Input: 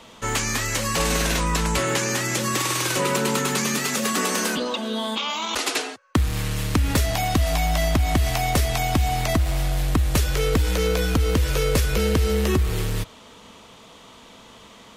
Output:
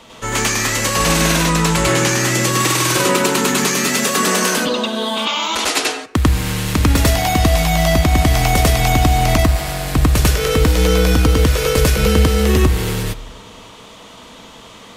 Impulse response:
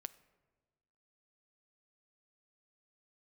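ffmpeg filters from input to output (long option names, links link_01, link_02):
-filter_complex "[0:a]asplit=2[link_01][link_02];[1:a]atrim=start_sample=2205,adelay=97[link_03];[link_02][link_03]afir=irnorm=-1:irlink=0,volume=7dB[link_04];[link_01][link_04]amix=inputs=2:normalize=0,volume=3dB"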